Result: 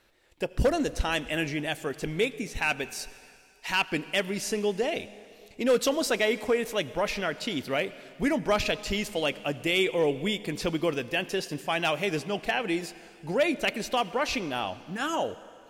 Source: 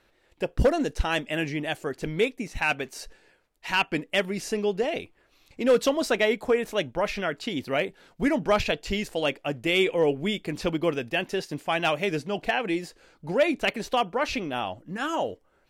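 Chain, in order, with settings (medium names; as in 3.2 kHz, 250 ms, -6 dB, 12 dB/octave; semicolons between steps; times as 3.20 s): treble shelf 3.9 kHz +6.5 dB; in parallel at -2 dB: peak limiter -17 dBFS, peak gain reduction 7 dB; on the sum: reverberation RT60 2.4 s, pre-delay 70 ms, DRR 16.5 dB; trim -6.5 dB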